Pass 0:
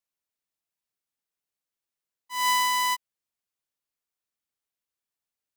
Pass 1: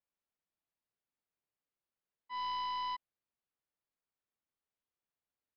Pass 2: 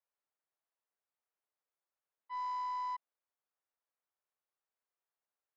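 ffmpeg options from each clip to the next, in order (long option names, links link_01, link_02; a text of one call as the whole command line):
ffmpeg -i in.wav -af "lowpass=frequency=1400:poles=1,aresample=11025,asoftclip=type=tanh:threshold=-36dB,aresample=44100" out.wav
ffmpeg -i in.wav -filter_complex "[0:a]acrossover=split=410 2000:gain=0.0891 1 0.224[link_01][link_02][link_03];[link_01][link_02][link_03]amix=inputs=3:normalize=0,asoftclip=type=tanh:threshold=-35dB,volume=2.5dB" out.wav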